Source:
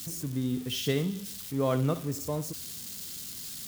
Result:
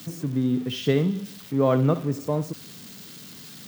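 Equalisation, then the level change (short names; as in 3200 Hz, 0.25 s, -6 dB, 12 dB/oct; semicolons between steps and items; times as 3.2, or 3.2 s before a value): HPF 120 Hz 24 dB/oct; high shelf 2700 Hz -7.5 dB; bell 11000 Hz -9 dB 1.8 oct; +7.5 dB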